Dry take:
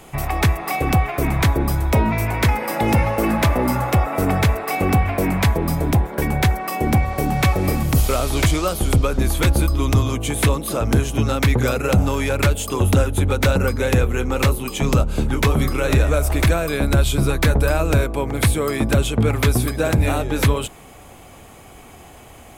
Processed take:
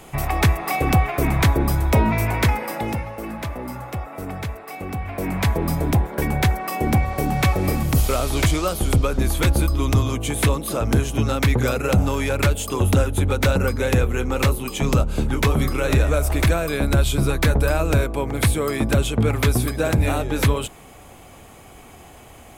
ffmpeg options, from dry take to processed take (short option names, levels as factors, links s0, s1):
-af "volume=3.35,afade=t=out:st=2.34:d=0.7:silence=0.251189,afade=t=in:st=4.97:d=0.64:silence=0.298538"